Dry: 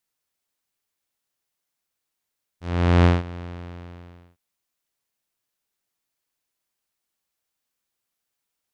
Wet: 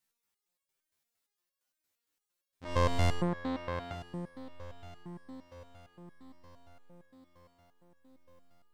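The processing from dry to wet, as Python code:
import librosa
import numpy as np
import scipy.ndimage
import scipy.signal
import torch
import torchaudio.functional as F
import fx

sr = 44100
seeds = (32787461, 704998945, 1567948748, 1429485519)

p1 = fx.graphic_eq_10(x, sr, hz=(250, 500, 1000, 2000), db=(5, 6, 12, 11), at=(2.64, 3.92))
p2 = fx.over_compress(p1, sr, threshold_db=-19.0, ratio=-1.0)
p3 = p1 + (p2 * librosa.db_to_amplitude(-2.0))
p4 = 10.0 ** (-8.5 / 20.0) * np.tanh(p3 / 10.0 ** (-8.5 / 20.0))
p5 = p4 + fx.echo_diffused(p4, sr, ms=1050, feedback_pct=54, wet_db=-15.5, dry=0)
y = fx.resonator_held(p5, sr, hz=8.7, low_hz=75.0, high_hz=550.0)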